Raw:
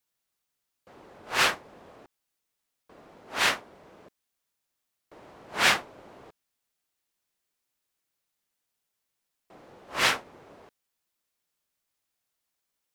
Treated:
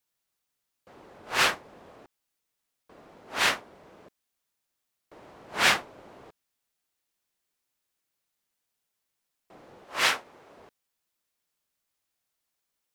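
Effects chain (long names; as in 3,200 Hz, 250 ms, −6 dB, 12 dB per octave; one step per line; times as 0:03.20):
0:09.84–0:10.57: low-shelf EQ 290 Hz −9 dB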